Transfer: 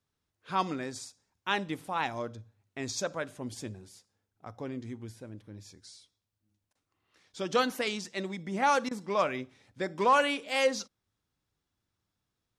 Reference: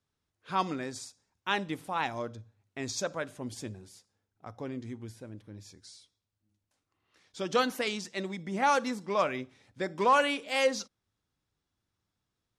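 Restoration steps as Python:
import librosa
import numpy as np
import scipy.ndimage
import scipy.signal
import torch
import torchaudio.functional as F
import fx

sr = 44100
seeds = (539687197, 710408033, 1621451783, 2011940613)

y = fx.fix_interpolate(x, sr, at_s=(6.73, 8.89), length_ms=20.0)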